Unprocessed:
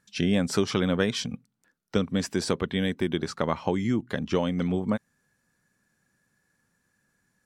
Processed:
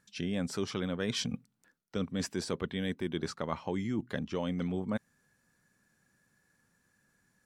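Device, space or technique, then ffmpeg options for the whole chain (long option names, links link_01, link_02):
compression on the reversed sound: -af "areverse,acompressor=threshold=-30dB:ratio=6,areverse"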